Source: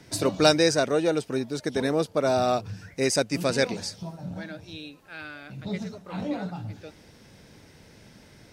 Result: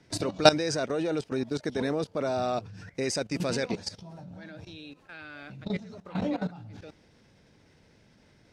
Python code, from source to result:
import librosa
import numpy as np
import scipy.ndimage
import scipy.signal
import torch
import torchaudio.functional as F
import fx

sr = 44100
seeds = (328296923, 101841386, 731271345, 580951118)

y = fx.level_steps(x, sr, step_db=16)
y = fx.air_absorb(y, sr, metres=54.0)
y = y * 10.0 ** (4.0 / 20.0)